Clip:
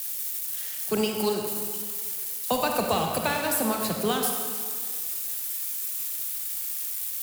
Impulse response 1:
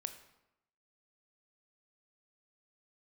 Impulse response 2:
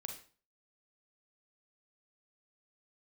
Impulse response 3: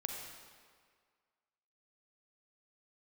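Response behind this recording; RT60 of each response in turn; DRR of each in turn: 3; 0.90 s, 0.40 s, 1.9 s; 8.5 dB, 3.0 dB, 1.5 dB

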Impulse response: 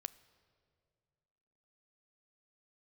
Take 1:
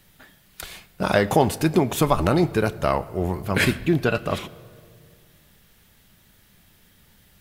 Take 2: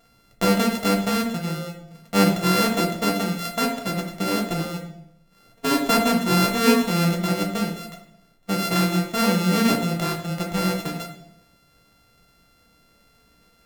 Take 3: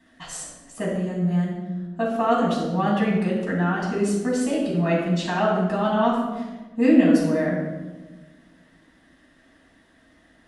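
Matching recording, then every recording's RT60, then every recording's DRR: 1; 2.2 s, 0.70 s, 1.2 s; 15.5 dB, 0.0 dB, -5.5 dB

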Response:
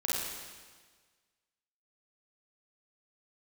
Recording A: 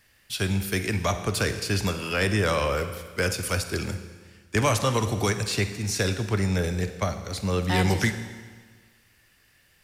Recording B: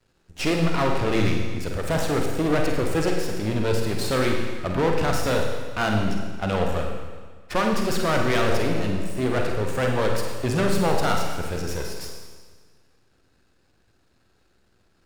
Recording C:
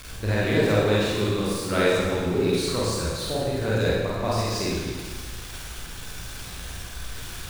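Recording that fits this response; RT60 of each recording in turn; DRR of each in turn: C; 1.5 s, 1.5 s, 1.5 s; 9.0 dB, 1.0 dB, -7.0 dB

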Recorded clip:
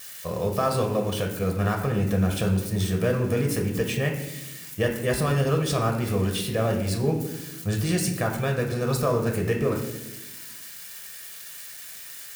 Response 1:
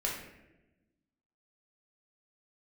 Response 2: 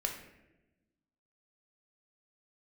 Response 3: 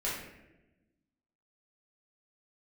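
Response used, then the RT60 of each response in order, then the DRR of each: 2; 1.0 s, 1.0 s, 1.0 s; -3.5 dB, 1.5 dB, -8.0 dB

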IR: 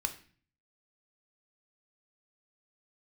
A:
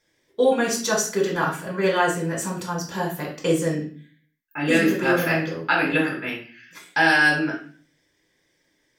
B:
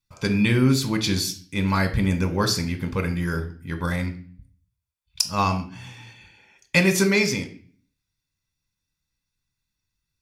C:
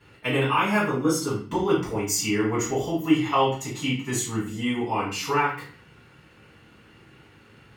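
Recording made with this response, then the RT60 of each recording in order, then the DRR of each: B; 0.40 s, 0.40 s, 0.40 s; -2.5 dB, 6.0 dB, -11.0 dB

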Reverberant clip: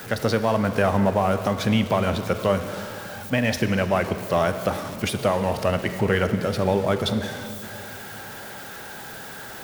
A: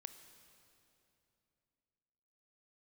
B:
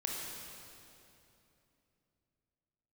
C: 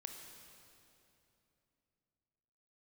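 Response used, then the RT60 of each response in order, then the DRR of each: A; 2.9 s, 2.9 s, 2.9 s; 9.0 dB, -2.0 dB, 3.5 dB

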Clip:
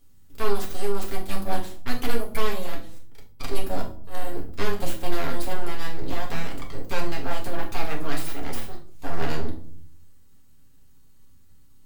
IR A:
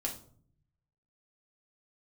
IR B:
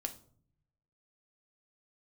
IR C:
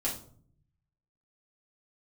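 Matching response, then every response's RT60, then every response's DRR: A; 0.55 s, 0.55 s, 0.55 s; -1.0 dB, 5.5 dB, -6.5 dB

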